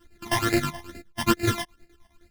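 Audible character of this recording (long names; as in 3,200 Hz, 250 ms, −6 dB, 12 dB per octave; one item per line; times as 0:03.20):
a buzz of ramps at a fixed pitch in blocks of 128 samples
phaser sweep stages 12, 2.3 Hz, lowest notch 420–1,100 Hz
chopped level 9.5 Hz, depth 65%, duty 55%
a shimmering, thickened sound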